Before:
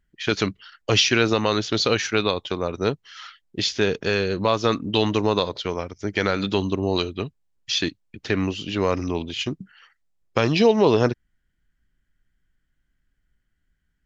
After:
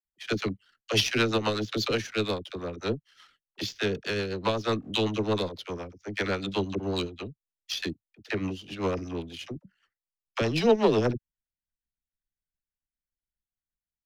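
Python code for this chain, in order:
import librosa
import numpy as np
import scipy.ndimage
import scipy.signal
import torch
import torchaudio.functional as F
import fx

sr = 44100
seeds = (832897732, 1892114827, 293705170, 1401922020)

y = fx.power_curve(x, sr, exponent=1.4)
y = fx.dispersion(y, sr, late='lows', ms=49.0, hz=450.0)
y = fx.rotary(y, sr, hz=8.0)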